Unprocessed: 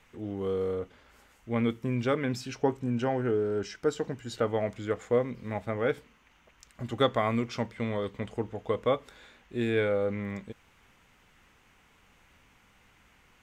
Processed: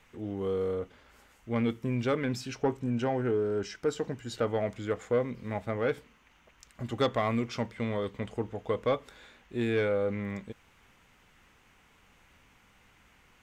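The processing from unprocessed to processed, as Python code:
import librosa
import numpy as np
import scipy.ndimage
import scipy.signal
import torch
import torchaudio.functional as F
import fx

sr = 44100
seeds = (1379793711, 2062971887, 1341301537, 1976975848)

y = 10.0 ** (-18.0 / 20.0) * np.tanh(x / 10.0 ** (-18.0 / 20.0))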